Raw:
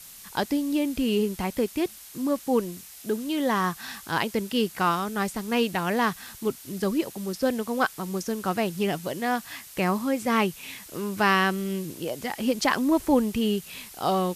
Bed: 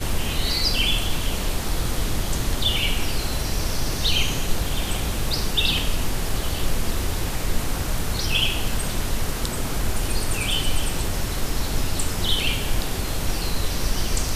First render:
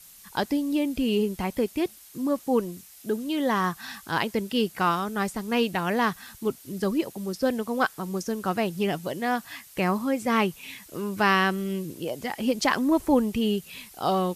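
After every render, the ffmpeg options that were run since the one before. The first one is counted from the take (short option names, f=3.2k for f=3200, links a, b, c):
-af "afftdn=nr=6:nf=-46"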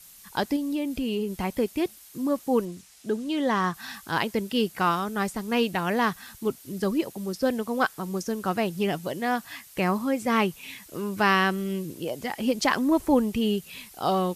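-filter_complex "[0:a]asettb=1/sr,asplit=3[a][b][c];[a]atrim=end=0.564[d];[b]atrim=start=0.56:end=1.4,asetpts=PTS-STARTPTS,afade=t=in:d=0.004:c=qsin,afade=t=out:st=0.836:d=0.004:c=qsin,acompressor=threshold=-27dB:ratio=2:attack=3.2:release=140:knee=1:detection=peak[e];[c]atrim=start=1.396[f];[d][e]acrossfade=d=0.004:c1=hsin:c2=qsin[g];[g][f]acrossfade=d=0.004:c1=qsin:c2=hsin,asettb=1/sr,asplit=3[h][i][j];[h]atrim=end=2.654[k];[i]atrim=start=2.65:end=3.74,asetpts=PTS-STARTPTS,afade=t=in:d=0.004:c=qsin,afade=t=out:st=1.086:d=0.004:c=qsin,lowpass=8.6k[l];[j]atrim=start=3.736[m];[k][l]acrossfade=d=0.004:c1=hsin:c2=qsin[n];[n][m]acrossfade=d=0.004:c1=qsin:c2=hsin"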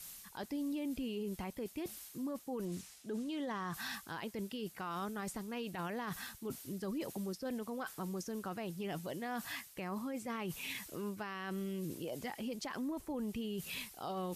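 -af "areverse,acompressor=threshold=-35dB:ratio=5,areverse,alimiter=level_in=8.5dB:limit=-24dB:level=0:latency=1:release=18,volume=-8.5dB"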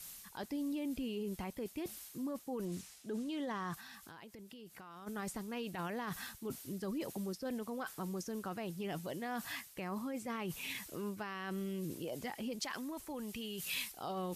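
-filter_complex "[0:a]asplit=3[a][b][c];[a]afade=t=out:st=3.74:d=0.02[d];[b]acompressor=threshold=-49dB:ratio=8:attack=3.2:release=140:knee=1:detection=peak,afade=t=in:st=3.74:d=0.02,afade=t=out:st=5.06:d=0.02[e];[c]afade=t=in:st=5.06:d=0.02[f];[d][e][f]amix=inputs=3:normalize=0,asettb=1/sr,asplit=3[g][h][i];[g]atrim=end=12.604[j];[h]atrim=start=12.6:end=13.92,asetpts=PTS-STARTPTS,afade=t=in:d=0.004:c=qsin,afade=t=out:st=1.316:d=0.004:c=qsin,tiltshelf=f=970:g=-5.5[k];[i]atrim=start=13.916[l];[j][k]acrossfade=d=0.004:c1=hsin:c2=qsin[m];[m][l]acrossfade=d=0.004:c1=qsin:c2=hsin"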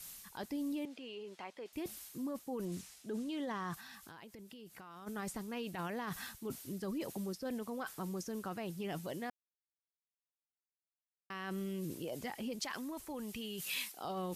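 -filter_complex "[0:a]asettb=1/sr,asplit=3[a][b][c];[a]atrim=end=0.854[d];[b]atrim=start=0.85:end=1.73,asetpts=PTS-STARTPTS,afade=t=in:d=0.004:c=qsin,afade=t=out:st=0.876:d=0.004:c=qsin,highpass=500,lowpass=4.7k[e];[c]atrim=start=1.726[f];[d][e]acrossfade=d=0.004:c1=hsin:c2=qsin[g];[g][f]acrossfade=d=0.004:c1=qsin:c2=hsin,asettb=1/sr,asplit=3[h][i][j];[h]atrim=end=13.624[k];[i]atrim=start=13.62:end=14.05,asetpts=PTS-STARTPTS,afade=t=in:d=0.004:c=qsin,afade=t=out:st=0.426:d=0.004:c=qsin,highpass=210[l];[j]atrim=start=14.046[m];[k][l]acrossfade=d=0.004:c1=hsin:c2=qsin[n];[n][m]acrossfade=d=0.004:c1=qsin:c2=hsin,asplit=3[o][p][q];[o]atrim=end=9.3,asetpts=PTS-STARTPTS,afade=t=out:st=9.296:d=0.004:c=hsin[r];[p]atrim=start=9.3:end=11.3,asetpts=PTS-STARTPTS,volume=0[s];[q]atrim=start=11.3,asetpts=PTS-STARTPTS,afade=t=in:d=0.004:c=hsin[t];[r][s][t]concat=n=3:v=0:a=1"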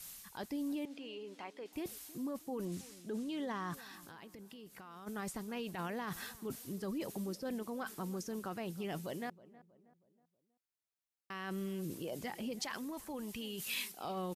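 -filter_complex "[0:a]asplit=2[a][b];[b]adelay=319,lowpass=f=1.3k:p=1,volume=-18.5dB,asplit=2[c][d];[d]adelay=319,lowpass=f=1.3k:p=1,volume=0.46,asplit=2[e][f];[f]adelay=319,lowpass=f=1.3k:p=1,volume=0.46,asplit=2[g][h];[h]adelay=319,lowpass=f=1.3k:p=1,volume=0.46[i];[a][c][e][g][i]amix=inputs=5:normalize=0"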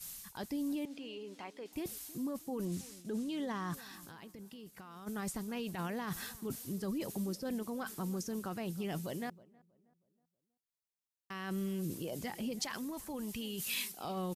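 -af "agate=range=-7dB:threshold=-55dB:ratio=16:detection=peak,bass=f=250:g=5,treble=f=4k:g=4"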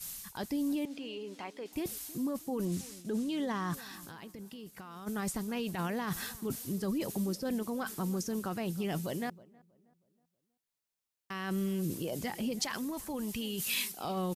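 -af "volume=4dB"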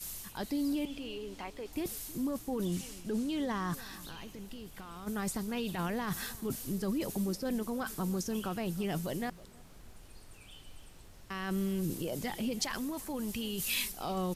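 -filter_complex "[1:a]volume=-30dB[a];[0:a][a]amix=inputs=2:normalize=0"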